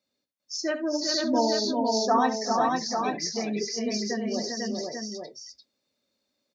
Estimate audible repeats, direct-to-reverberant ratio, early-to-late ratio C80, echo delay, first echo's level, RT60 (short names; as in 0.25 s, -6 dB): 5, none, none, 70 ms, -13.0 dB, none